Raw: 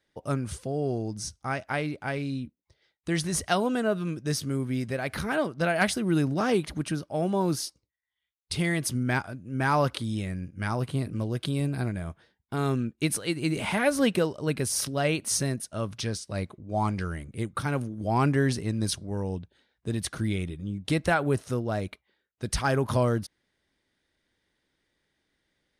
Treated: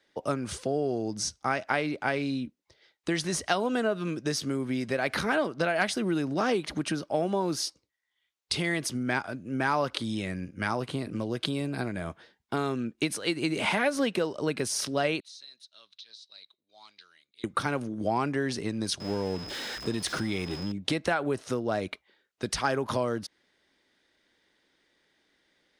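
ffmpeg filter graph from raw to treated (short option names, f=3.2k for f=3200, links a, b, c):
-filter_complex "[0:a]asettb=1/sr,asplit=3[a][b][c];[a]atrim=end=15.204[d];[b]atrim=start=15.2:end=17.44,asetpts=PTS-STARTPTS,afade=t=in:d=0.004:c=qsin,afade=t=out:st=2.236:d=0.004:c=qsin,bandpass=f=3.9k:t=q:w=10,acompressor=threshold=-51dB:ratio=5:attack=3.2:release=140:knee=1:detection=peak[e];[c]atrim=start=17.436[f];[d][e]acrossfade=d=0.004:c1=hsin:c2=qsin[g];[g][f]acrossfade=d=0.004:c1=qsin:c2=hsin,asettb=1/sr,asplit=3[h][i][j];[h]atrim=end=19.004[k];[i]atrim=start=19:end=20.72,asetpts=PTS-STARTPTS,afade=t=in:d=0.004:c=qsin,afade=t=out:st=1.716:d=0.004:c=qsin,aeval=exprs='val(0)+0.5*0.0133*sgn(val(0))':c=same,aeval=exprs='val(0)+0.00398*sin(2*PI*5100*n/s)':c=same[l];[j]atrim=start=20.716[m];[k][l]acrossfade=d=0.004:c1=hsin:c2=qsin[n];[n][m]acrossfade=d=0.004:c1=qsin:c2=hsin,highshelf=f=6.1k:g=5,acompressor=threshold=-29dB:ratio=6,acrossover=split=210 7000:gain=0.251 1 0.2[o][p][q];[o][p][q]amix=inputs=3:normalize=0,volume=6.5dB"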